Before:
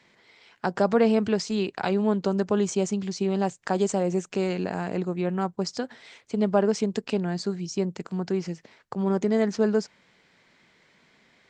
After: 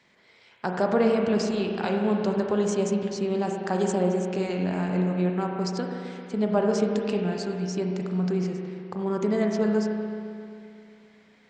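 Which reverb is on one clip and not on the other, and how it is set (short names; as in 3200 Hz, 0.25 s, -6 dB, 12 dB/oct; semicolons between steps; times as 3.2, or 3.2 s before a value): spring tank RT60 2.6 s, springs 33/44 ms, chirp 65 ms, DRR 1 dB; gain -2.5 dB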